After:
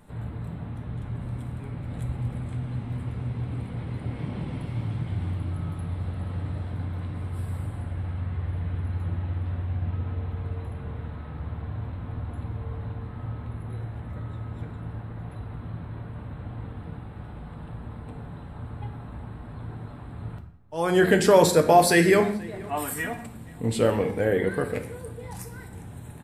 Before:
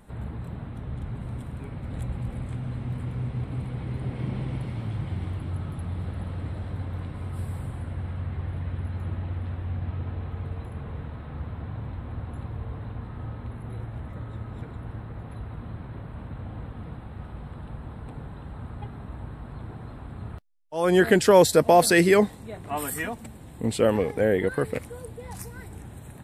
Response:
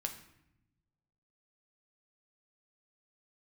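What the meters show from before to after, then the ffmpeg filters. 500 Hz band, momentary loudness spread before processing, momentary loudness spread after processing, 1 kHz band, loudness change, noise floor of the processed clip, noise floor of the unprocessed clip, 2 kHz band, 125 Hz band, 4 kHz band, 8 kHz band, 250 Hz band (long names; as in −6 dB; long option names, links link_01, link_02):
−0.5 dB, 19 LU, 18 LU, +1.0 dB, −0.5 dB, −41 dBFS, −43 dBFS, 0.0 dB, +1.5 dB, −0.5 dB, −0.5 dB, −0.5 dB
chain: -filter_complex "[0:a]asplit=2[link_01][link_02];[link_02]adelay=478.1,volume=-22dB,highshelf=frequency=4000:gain=-10.8[link_03];[link_01][link_03]amix=inputs=2:normalize=0[link_04];[1:a]atrim=start_sample=2205,afade=type=out:start_time=0.27:duration=0.01,atrim=end_sample=12348[link_05];[link_04][link_05]afir=irnorm=-1:irlink=0"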